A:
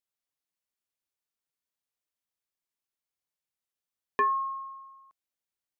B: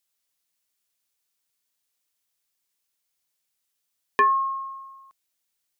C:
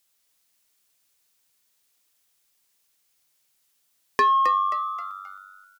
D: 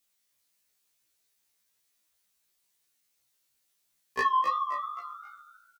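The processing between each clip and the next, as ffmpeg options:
-af "highshelf=f=2300:g=9.5,volume=1.68"
-filter_complex "[0:a]acompressor=threshold=0.0631:ratio=3,asoftclip=type=tanh:threshold=0.0841,asplit=2[s0][s1];[s1]asplit=4[s2][s3][s4][s5];[s2]adelay=265,afreqshift=96,volume=0.422[s6];[s3]adelay=530,afreqshift=192,volume=0.164[s7];[s4]adelay=795,afreqshift=288,volume=0.0638[s8];[s5]adelay=1060,afreqshift=384,volume=0.0251[s9];[s6][s7][s8][s9]amix=inputs=4:normalize=0[s10];[s0][s10]amix=inputs=2:normalize=0,volume=2.51"
-filter_complex "[0:a]asplit=2[s0][s1];[s1]adelay=15,volume=0.224[s2];[s0][s2]amix=inputs=2:normalize=0,flanger=delay=15.5:depth=5.2:speed=2.8,afftfilt=real='re*1.73*eq(mod(b,3),0)':imag='im*1.73*eq(mod(b,3),0)':win_size=2048:overlap=0.75"

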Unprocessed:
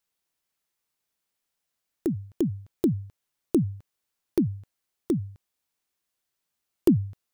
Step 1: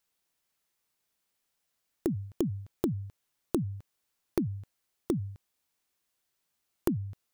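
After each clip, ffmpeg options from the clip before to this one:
-af "acompressor=threshold=0.0398:ratio=10,volume=1.26"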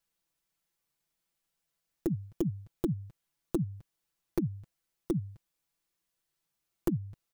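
-af "lowshelf=f=160:g=8,aecho=1:1:6:0.68,volume=0.531"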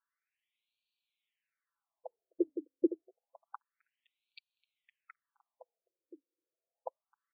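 -filter_complex "[0:a]asplit=2[s0][s1];[s1]adelay=513,lowpass=f=2000:p=1,volume=0.299,asplit=2[s2][s3];[s3]adelay=513,lowpass=f=2000:p=1,volume=0.18[s4];[s0][s2][s4]amix=inputs=3:normalize=0,tremolo=f=110:d=0.4,afftfilt=real='re*between(b*sr/1024,400*pow(3300/400,0.5+0.5*sin(2*PI*0.28*pts/sr))/1.41,400*pow(3300/400,0.5+0.5*sin(2*PI*0.28*pts/sr))*1.41)':imag='im*between(b*sr/1024,400*pow(3300/400,0.5+0.5*sin(2*PI*0.28*pts/sr))/1.41,400*pow(3300/400,0.5+0.5*sin(2*PI*0.28*pts/sr))*1.41)':win_size=1024:overlap=0.75,volume=1.88"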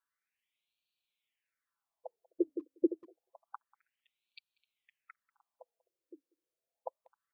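-filter_complex "[0:a]asplit=2[s0][s1];[s1]adelay=190,highpass=300,lowpass=3400,asoftclip=type=hard:threshold=0.0501,volume=0.0631[s2];[s0][s2]amix=inputs=2:normalize=0"

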